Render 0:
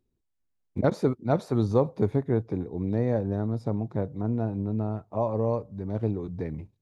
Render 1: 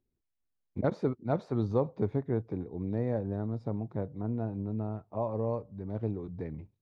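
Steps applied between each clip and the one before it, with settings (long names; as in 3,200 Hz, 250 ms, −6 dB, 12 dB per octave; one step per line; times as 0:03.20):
Bessel low-pass filter 3,500 Hz, order 2
level −5.5 dB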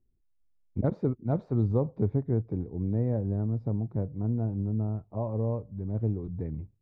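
spectral tilt −3.5 dB per octave
level −4.5 dB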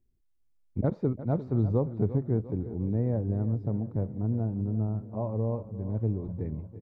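repeating echo 349 ms, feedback 56%, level −14 dB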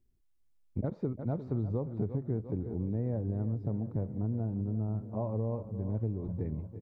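downward compressor, threshold −29 dBFS, peak gain reduction 8 dB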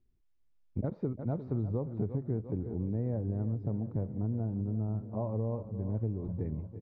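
high-frequency loss of the air 140 metres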